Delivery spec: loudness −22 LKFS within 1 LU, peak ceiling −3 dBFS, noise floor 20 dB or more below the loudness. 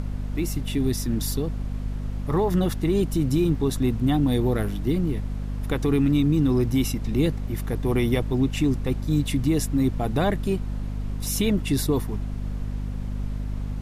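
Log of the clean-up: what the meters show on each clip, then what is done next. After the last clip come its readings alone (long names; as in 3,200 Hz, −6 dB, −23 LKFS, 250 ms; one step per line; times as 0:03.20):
mains hum 50 Hz; hum harmonics up to 250 Hz; level of the hum −26 dBFS; background noise floor −31 dBFS; target noise floor −45 dBFS; integrated loudness −25.0 LKFS; sample peak −10.5 dBFS; target loudness −22.0 LKFS
→ hum removal 50 Hz, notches 5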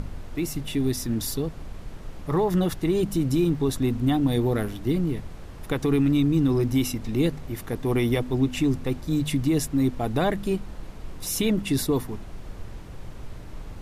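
mains hum none found; background noise floor −40 dBFS; target noise floor −45 dBFS
→ noise reduction from a noise print 6 dB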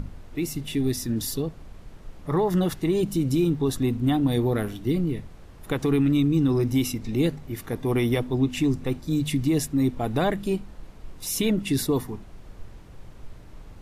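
background noise floor −45 dBFS; integrated loudness −25.0 LKFS; sample peak −12.0 dBFS; target loudness −22.0 LKFS
→ level +3 dB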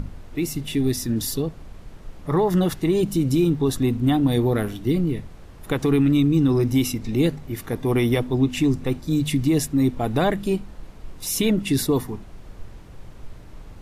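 integrated loudness −22.0 LKFS; sample peak −9.0 dBFS; background noise floor −42 dBFS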